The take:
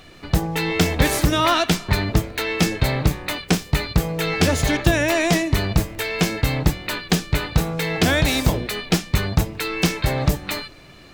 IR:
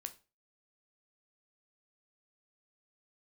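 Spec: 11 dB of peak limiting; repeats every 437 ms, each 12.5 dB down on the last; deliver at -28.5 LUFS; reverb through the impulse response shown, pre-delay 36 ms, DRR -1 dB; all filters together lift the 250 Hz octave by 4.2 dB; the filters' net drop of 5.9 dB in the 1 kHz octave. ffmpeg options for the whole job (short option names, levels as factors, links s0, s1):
-filter_complex "[0:a]equalizer=f=250:t=o:g=7,equalizer=f=1000:t=o:g=-9,alimiter=limit=0.266:level=0:latency=1,aecho=1:1:437|874|1311:0.237|0.0569|0.0137,asplit=2[s0][s1];[1:a]atrim=start_sample=2205,adelay=36[s2];[s1][s2]afir=irnorm=-1:irlink=0,volume=1.68[s3];[s0][s3]amix=inputs=2:normalize=0,volume=0.335"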